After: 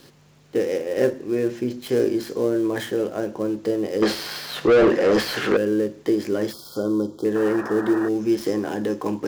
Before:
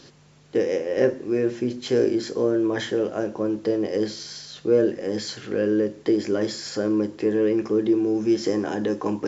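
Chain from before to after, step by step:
gap after every zero crossing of 0.079 ms
0:04.02–0:05.57: mid-hump overdrive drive 27 dB, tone 2,100 Hz, clips at −8 dBFS
0:06.53–0:07.25: linear-phase brick-wall band-stop 1,500–3,100 Hz
0:07.35–0:08.09: sound drawn into the spectrogram noise 270–1,900 Hz −33 dBFS

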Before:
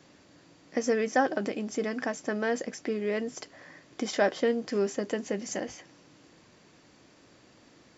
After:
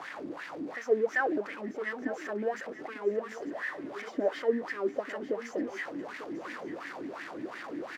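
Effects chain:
converter with a step at zero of −27 dBFS
LFO wah 2.8 Hz 280–1,900 Hz, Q 4.9
single-tap delay 895 ms −15 dB
level +3.5 dB

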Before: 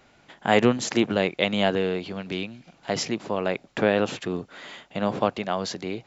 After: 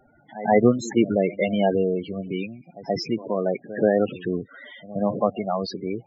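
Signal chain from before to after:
backwards echo 129 ms −16.5 dB
spectral peaks only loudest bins 16
level +3 dB

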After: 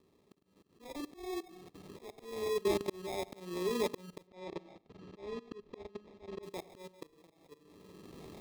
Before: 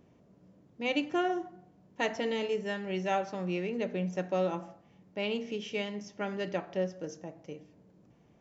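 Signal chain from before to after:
camcorder AGC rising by 13 dB per second
amplitude modulation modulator 21 Hz, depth 25%
rotating-speaker cabinet horn 8 Hz
decimation without filtering 30×
0:04.27–0:06.43: high-frequency loss of the air 150 metres
tape delay 94 ms, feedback 23%, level −19 dB, low-pass 1,200 Hz
output level in coarse steps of 20 dB
thirty-one-band graphic EQ 125 Hz −11 dB, 200 Hz −3 dB, 400 Hz +10 dB, 1,600 Hz −7 dB, 4,000 Hz +5 dB
volume swells 737 ms
level +10 dB

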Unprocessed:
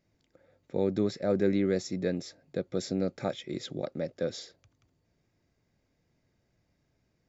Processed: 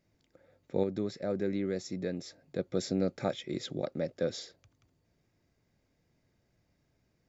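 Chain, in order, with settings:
0:00.83–0:02.59: downward compressor 1.5 to 1, threshold −39 dBFS, peak gain reduction 7 dB

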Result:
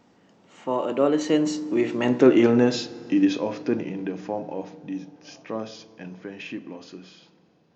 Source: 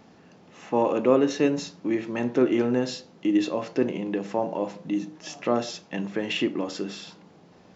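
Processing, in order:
source passing by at 0:02.38, 27 m/s, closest 18 metres
feedback delay network reverb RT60 4 s, high-frequency decay 0.6×, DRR 18.5 dB
level +6 dB

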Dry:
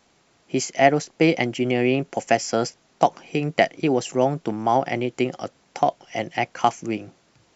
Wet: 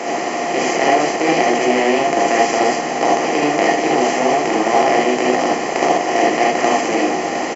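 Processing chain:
compressor on every frequency bin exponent 0.2
Chebyshev high-pass filter 290 Hz, order 2
on a send: echo with shifted repeats 131 ms, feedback 56%, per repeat −79 Hz, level −23 dB
on the sum: reverb whose tail is shaped and stops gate 100 ms rising, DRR −3 dB
level −7 dB

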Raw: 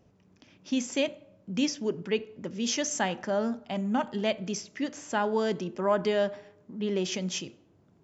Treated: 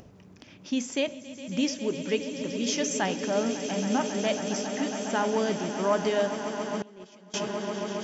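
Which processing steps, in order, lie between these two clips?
echo that builds up and dies away 137 ms, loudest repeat 8, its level −14 dB
upward compression, threshold −41 dBFS
0:06.82–0:07.34: noise gate −22 dBFS, range −23 dB

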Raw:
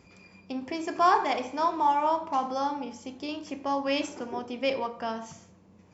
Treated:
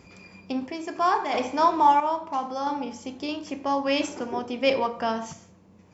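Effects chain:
sample-and-hold tremolo 1.5 Hz
level +6 dB

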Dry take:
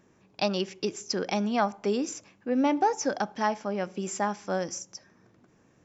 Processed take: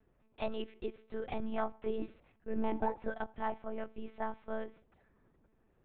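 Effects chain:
high-shelf EQ 2,500 Hz −8.5 dB
one-pitch LPC vocoder at 8 kHz 220 Hz
level −8 dB

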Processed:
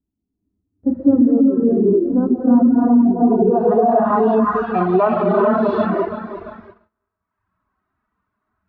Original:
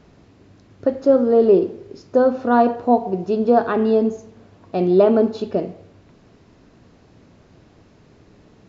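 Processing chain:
feedback delay that plays each chunk backwards 171 ms, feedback 66%, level −10 dB
graphic EQ with 10 bands 250 Hz −4 dB, 500 Hz −11 dB, 1,000 Hz +7 dB, 2,000 Hz +5 dB, 4,000 Hz +8 dB
reverb whose tail is shaped and stops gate 470 ms rising, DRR −5.5 dB
low-pass filter sweep 290 Hz → 1,300 Hz, 0:03.13–0:04.65
brickwall limiter −12 dBFS, peak gain reduction 13 dB
parametric band 150 Hz −12.5 dB 0.29 octaves
noise gate −36 dBFS, range −32 dB
harmonic and percussive parts rebalanced percussive −16 dB
reverb reduction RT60 1 s
level +8.5 dB

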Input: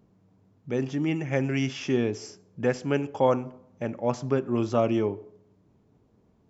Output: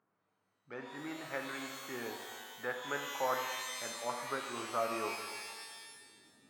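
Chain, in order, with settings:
running median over 15 samples
band-pass filter sweep 1,400 Hz → 250 Hz, 0:04.88–0:06.49
reverb with rising layers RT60 1.5 s, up +12 semitones, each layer −2 dB, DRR 4 dB

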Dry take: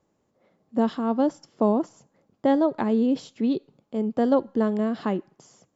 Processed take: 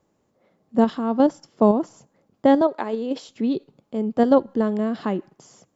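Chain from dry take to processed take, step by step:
in parallel at 0 dB: output level in coarse steps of 20 dB
0:02.61–0:03.29: on the sum: high-pass filter 400 Hz 12 dB per octave

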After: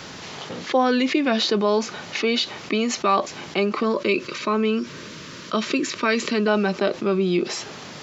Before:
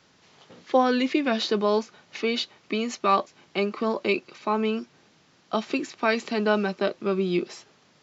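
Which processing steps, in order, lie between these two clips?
0:03.83–0:06.48: Butterworth band-reject 770 Hz, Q 2.6
envelope flattener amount 50%

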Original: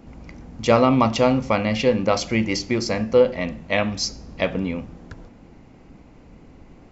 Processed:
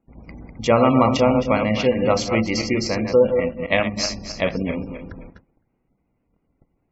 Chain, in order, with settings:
feedback delay that plays each chunk backwards 131 ms, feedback 53%, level −6 dB
0:03.32–0:03.97: transient designer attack +4 dB, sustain −6 dB
noise gate −39 dBFS, range −24 dB
gate on every frequency bin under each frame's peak −30 dB strong
every ending faded ahead of time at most 450 dB per second

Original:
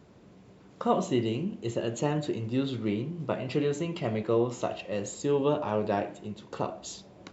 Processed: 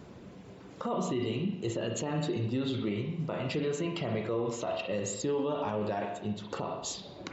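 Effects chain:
in parallel at +0.5 dB: downward compressor, threshold −42 dBFS, peak gain reduction 20.5 dB
on the sum: reverb reduction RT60 0.71 s
on a send at −6 dB: high-shelf EQ 4,100 Hz +11.5 dB + convolution reverb RT60 0.85 s, pre-delay 38 ms
on the sum: brickwall limiter −23.5 dBFS, peak gain reduction 12 dB

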